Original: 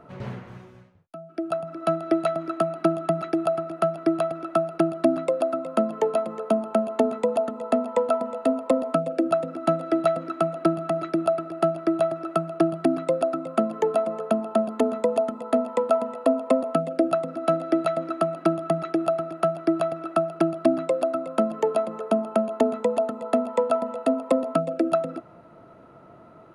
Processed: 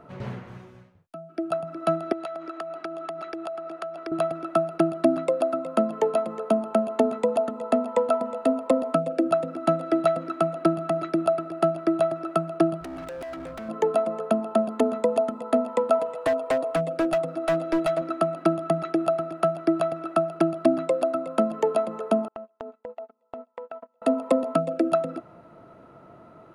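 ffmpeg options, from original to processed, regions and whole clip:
ffmpeg -i in.wav -filter_complex "[0:a]asettb=1/sr,asplit=3[link_01][link_02][link_03];[link_01]atrim=end=2.124[link_04];[link_02]atrim=start=2.12:end=4.12,asetpts=PTS-STARTPTS,afade=type=in:duration=0.004:curve=qsin,afade=type=out:start_time=1.996:duration=0.004:curve=qsin,highpass=370,lowpass=7400,acompressor=threshold=-31dB:ratio=4:attack=3.2:release=140:knee=1:detection=peak[link_05];[link_03]atrim=start=4.116[link_06];[link_04][link_05]acrossfade=duration=0.004:curve1=hsin:curve2=qsin[link_07];[link_07][link_06]acrossfade=duration=0.004:curve1=qsin:curve2=hsin,asettb=1/sr,asplit=3[link_08][link_09][link_10];[link_08]atrim=end=12.814[link_11];[link_09]atrim=start=12.81:end=13.69,asetpts=PTS-STARTPTS,afade=type=in:duration=0.004:curve=qsin,afade=type=out:start_time=0.876:duration=0.004:curve=qsin,aeval=exprs='val(0)+0.00447*(sin(2*PI*60*n/s)+sin(2*PI*2*60*n/s)/2+sin(2*PI*3*60*n/s)/3+sin(2*PI*4*60*n/s)/4+sin(2*PI*5*60*n/s)/5)':channel_layout=same,acompressor=threshold=-28dB:ratio=6:attack=3.2:release=140:knee=1:detection=peak,asoftclip=type=hard:threshold=-33.5dB[link_12];[link_10]atrim=start=13.686[link_13];[link_11][link_12]acrossfade=duration=0.004:curve1=hsin:curve2=qsin[link_14];[link_14][link_13]acrossfade=duration=0.004:curve1=qsin:curve2=hsin,asettb=1/sr,asplit=3[link_15][link_16][link_17];[link_15]atrim=end=15.994[link_18];[link_16]atrim=start=15.99:end=18.02,asetpts=PTS-STARTPTS,afade=type=in:duration=0.004:curve=qsin,afade=type=out:start_time=2.026:duration=0.004:curve=qsin,equalizer=frequency=230:width_type=o:width=0.3:gain=-14.5,aecho=1:1:6.4:0.58,atrim=end_sample=89523,volume=18.5dB,asoftclip=hard,volume=-18.5dB[link_19];[link_17]atrim=start=18.016[link_20];[link_18][link_19]acrossfade=duration=0.004:curve1=hsin:curve2=qsin[link_21];[link_21][link_20]acrossfade=duration=0.004:curve1=qsin:curve2=hsin,asettb=1/sr,asplit=3[link_22][link_23][link_24];[link_22]atrim=end=22.284[link_25];[link_23]atrim=start=22.28:end=24.02,asetpts=PTS-STARTPTS,afade=type=in:duration=0.004:curve=qsin,afade=type=out:start_time=1.736:duration=0.004:curve=qsin,agate=range=-37dB:threshold=-25dB:ratio=16:release=100:detection=peak,highpass=330,lowpass=4400,acompressor=threshold=-35dB:ratio=6:attack=3.2:release=140:knee=1:detection=peak[link_26];[link_24]atrim=start=24.016[link_27];[link_25][link_26]acrossfade=duration=0.004:curve1=hsin:curve2=qsin[link_28];[link_28][link_27]acrossfade=duration=0.004:curve1=qsin:curve2=hsin" out.wav

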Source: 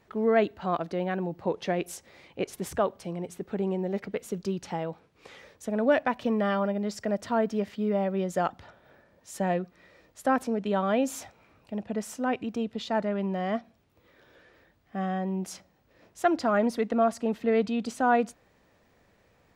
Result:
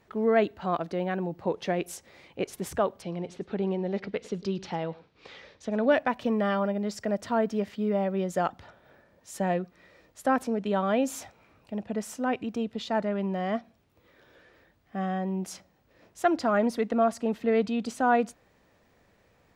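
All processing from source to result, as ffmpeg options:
ffmpeg -i in.wav -filter_complex "[0:a]asettb=1/sr,asplit=3[link_01][link_02][link_03];[link_01]atrim=end=3.024[link_04];[link_02]atrim=start=3.02:end=5.95,asetpts=PTS-STARTPTS,afade=type=in:duration=0.004:curve=qsin,afade=type=out:start_time=2.926:duration=0.004:curve=qsin,lowpass=frequency=4400:width_type=q:width=1.6,aecho=1:1:104:0.112,atrim=end_sample=129213[link_05];[link_03]atrim=start=5.946[link_06];[link_04][link_05]acrossfade=duration=0.004:curve1=hsin:curve2=qsin[link_07];[link_07][link_06]acrossfade=duration=0.004:curve1=qsin:curve2=hsin" out.wav

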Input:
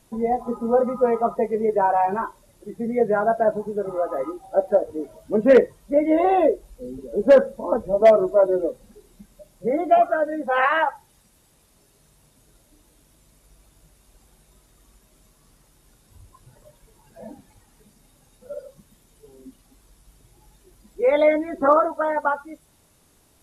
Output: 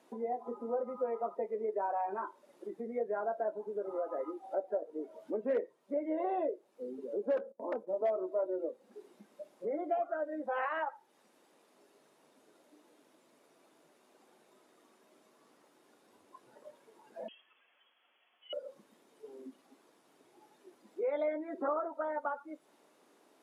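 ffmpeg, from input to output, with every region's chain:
ffmpeg -i in.wav -filter_complex "[0:a]asettb=1/sr,asplit=3[link_01][link_02][link_03];[link_01]atrim=end=7.374[link_04];[link_02]atrim=start=7.37:end=7.89,asetpts=PTS-STARTPTS,afade=type=in:duration=0.004:curve=qsin,afade=type=out:start_time=0.516:duration=0.004:curve=qsin,equalizer=frequency=2900:width=0.45:gain=-7.5,aeval=exprs='0.168*(abs(mod(val(0)/0.168+3,4)-2)-1)':channel_layout=same,agate=range=-17dB:threshold=-38dB:ratio=16:release=100:detection=peak[link_05];[link_03]atrim=start=7.886[link_06];[link_04][link_05]acrossfade=duration=0.004:curve1=hsin:curve2=qsin[link_07];[link_07][link_06]acrossfade=duration=0.004:curve1=qsin:curve2=hsin,asettb=1/sr,asplit=3[link_08][link_09][link_10];[link_08]atrim=end=17.284[link_11];[link_09]atrim=start=17.28:end=18.53,asetpts=PTS-STARTPTS,afade=type=in:duration=0.004:curve=qsin,afade=type=out:start_time=1.246:duration=0.004:curve=qsin,highpass=frequency=740:poles=1,lowpass=frequency=3000:width_type=q:width=0.5098,lowpass=frequency=3000:width_type=q:width=0.6013,lowpass=frequency=3000:width_type=q:width=0.9,lowpass=frequency=3000:width_type=q:width=2.563,afreqshift=-3500[link_12];[link_10]atrim=start=18.526[link_13];[link_11][link_12]acrossfade=duration=0.004:curve1=hsin:curve2=qsin[link_14];[link_14][link_13]acrossfade=duration=0.004:curve1=qsin:curve2=hsin,lowpass=frequency=1500:poles=1,acompressor=threshold=-39dB:ratio=2.5,highpass=frequency=280:width=0.5412,highpass=frequency=280:width=1.3066" out.wav

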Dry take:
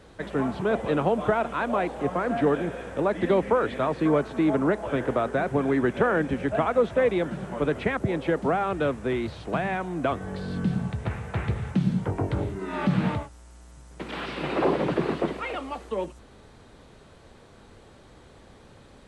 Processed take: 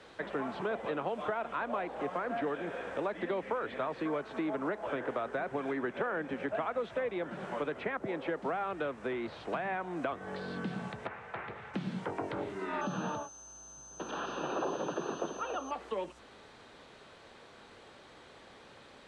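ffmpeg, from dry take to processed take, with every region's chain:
ffmpeg -i in.wav -filter_complex "[0:a]asettb=1/sr,asplit=3[link_01][link_02][link_03];[link_01]atrim=end=11.074[link_04];[link_02]atrim=start=11.07:end=11.74,asetpts=PTS-STARTPTS,afade=type=in:duration=0.004:curve=qsin,afade=type=out:start_time=0.666:duration=0.004:curve=qsin,lowpass=frequency=1500:poles=1,lowshelf=frequency=450:gain=-11.5[link_05];[link_03]atrim=start=11.736[link_06];[link_04][link_05]acrossfade=duration=0.004:curve1=hsin:curve2=qsin[link_07];[link_07][link_06]acrossfade=duration=0.004:curve1=qsin:curve2=hsin,asettb=1/sr,asplit=3[link_08][link_09][link_10];[link_08]atrim=end=12.814[link_11];[link_09]atrim=start=12.81:end=15.71,asetpts=PTS-STARTPTS,afade=type=in:duration=0.004:curve=qsin,afade=type=out:start_time=2.896:duration=0.004:curve=qsin,asuperstop=centerf=2100:order=4:qfactor=2.2,aeval=exprs='val(0)+0.00891*sin(2*PI*6200*n/s)':channel_layout=same[link_12];[link_10]atrim=start=15.706[link_13];[link_11][link_12]acrossfade=duration=0.004:curve1=hsin:curve2=qsin[link_14];[link_14][link_13]acrossfade=duration=0.004:curve1=qsin:curve2=hsin,lowpass=3200,aemphasis=mode=production:type=riaa,acrossover=split=150|1800[link_15][link_16][link_17];[link_15]acompressor=threshold=-56dB:ratio=4[link_18];[link_16]acompressor=threshold=-33dB:ratio=4[link_19];[link_17]acompressor=threshold=-52dB:ratio=4[link_20];[link_18][link_19][link_20]amix=inputs=3:normalize=0" out.wav

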